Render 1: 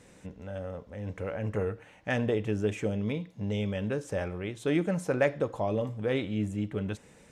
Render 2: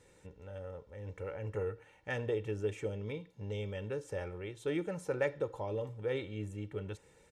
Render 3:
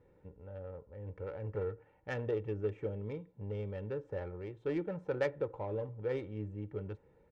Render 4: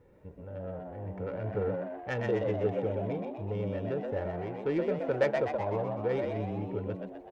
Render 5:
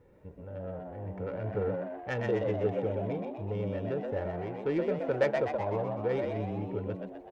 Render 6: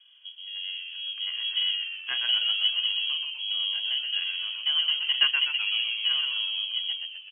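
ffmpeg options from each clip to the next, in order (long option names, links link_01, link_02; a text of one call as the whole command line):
ffmpeg -i in.wav -af "aecho=1:1:2.2:0.59,volume=-8.5dB" out.wav
ffmpeg -i in.wav -af "adynamicsmooth=sensitivity=3:basefreq=1200" out.wav
ffmpeg -i in.wav -filter_complex "[0:a]asplit=8[link_01][link_02][link_03][link_04][link_05][link_06][link_07][link_08];[link_02]adelay=125,afreqshift=86,volume=-4dB[link_09];[link_03]adelay=250,afreqshift=172,volume=-9.2dB[link_10];[link_04]adelay=375,afreqshift=258,volume=-14.4dB[link_11];[link_05]adelay=500,afreqshift=344,volume=-19.6dB[link_12];[link_06]adelay=625,afreqshift=430,volume=-24.8dB[link_13];[link_07]adelay=750,afreqshift=516,volume=-30dB[link_14];[link_08]adelay=875,afreqshift=602,volume=-35.2dB[link_15];[link_01][link_09][link_10][link_11][link_12][link_13][link_14][link_15]amix=inputs=8:normalize=0,volume=4.5dB" out.wav
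ffmpeg -i in.wav -af anull out.wav
ffmpeg -i in.wav -filter_complex "[0:a]asplit=2[link_01][link_02];[link_02]adynamicsmooth=sensitivity=4:basefreq=1200,volume=-4.5dB[link_03];[link_01][link_03]amix=inputs=2:normalize=0,lowpass=frequency=2900:width_type=q:width=0.5098,lowpass=frequency=2900:width_type=q:width=0.6013,lowpass=frequency=2900:width_type=q:width=0.9,lowpass=frequency=2900:width_type=q:width=2.563,afreqshift=-3400" out.wav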